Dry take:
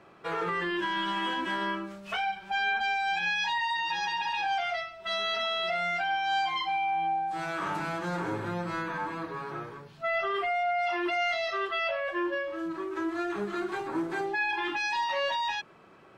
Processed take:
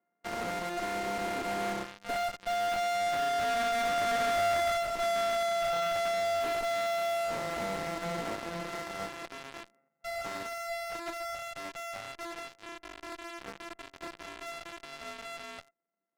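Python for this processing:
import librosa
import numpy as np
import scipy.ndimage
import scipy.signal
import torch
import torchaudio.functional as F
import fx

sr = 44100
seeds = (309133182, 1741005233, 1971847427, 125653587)

p1 = np.r_[np.sort(x[:len(x) // 64 * 64].reshape(-1, 64), axis=1).ravel(), x[len(x) // 64 * 64:]]
p2 = fx.doppler_pass(p1, sr, speed_mps=5, closest_m=2.6, pass_at_s=4.51)
p3 = scipy.signal.sosfilt(scipy.signal.ellip(3, 1.0, 40, [190.0, 2100.0], 'bandpass', fs=sr, output='sos'), p2)
p4 = fx.fuzz(p3, sr, gain_db=58.0, gate_db=-53.0)
p5 = p3 + F.gain(torch.from_numpy(p4), -10.5).numpy()
p6 = fx.doppler_dist(p5, sr, depth_ms=0.11)
y = F.gain(torch.from_numpy(p6), -6.0).numpy()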